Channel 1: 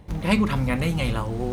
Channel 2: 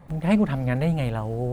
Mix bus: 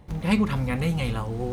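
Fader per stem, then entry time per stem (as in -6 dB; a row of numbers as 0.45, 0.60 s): -3.5, -11.0 dB; 0.00, 0.00 s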